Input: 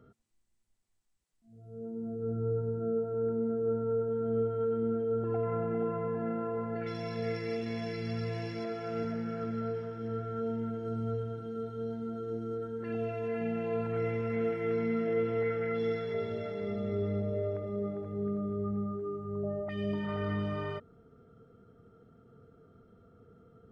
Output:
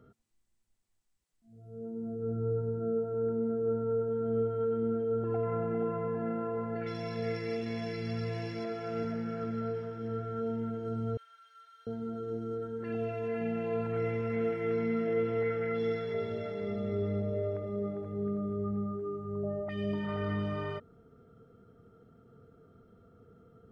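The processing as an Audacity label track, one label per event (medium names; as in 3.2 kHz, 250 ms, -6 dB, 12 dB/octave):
11.170000	11.870000	high-pass 1.5 kHz 24 dB/octave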